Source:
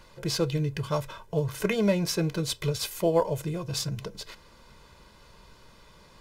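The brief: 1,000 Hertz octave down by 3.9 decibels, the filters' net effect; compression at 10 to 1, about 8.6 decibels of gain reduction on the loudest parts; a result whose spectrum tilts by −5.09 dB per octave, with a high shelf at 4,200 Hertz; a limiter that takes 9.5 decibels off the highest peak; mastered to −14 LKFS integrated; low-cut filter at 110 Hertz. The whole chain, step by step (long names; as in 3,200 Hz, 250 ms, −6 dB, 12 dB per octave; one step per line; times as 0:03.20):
high-pass filter 110 Hz
parametric band 1,000 Hz −4.5 dB
high-shelf EQ 4,200 Hz −5.5 dB
downward compressor 10 to 1, threshold −28 dBFS
level +24 dB
brickwall limiter −4.5 dBFS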